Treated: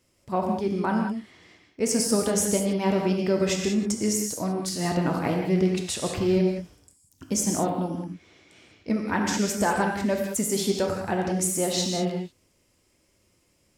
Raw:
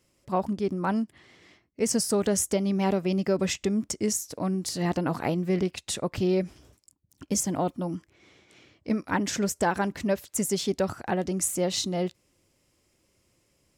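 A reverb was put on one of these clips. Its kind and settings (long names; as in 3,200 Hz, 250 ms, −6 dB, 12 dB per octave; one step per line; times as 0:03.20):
reverb whose tail is shaped and stops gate 220 ms flat, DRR 1 dB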